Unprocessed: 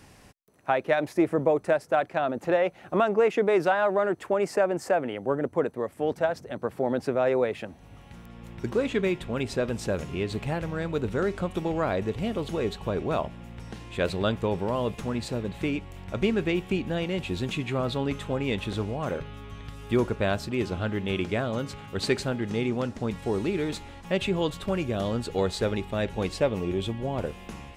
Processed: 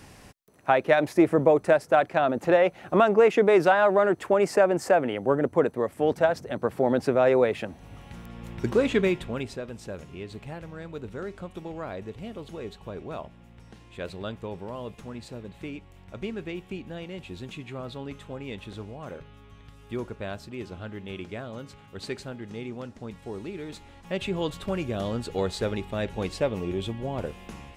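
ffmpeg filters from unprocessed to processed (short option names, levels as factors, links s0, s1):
-af "volume=3.55,afade=t=out:st=8.96:d=0.65:silence=0.237137,afade=t=in:st=23.64:d=0.89:silence=0.421697"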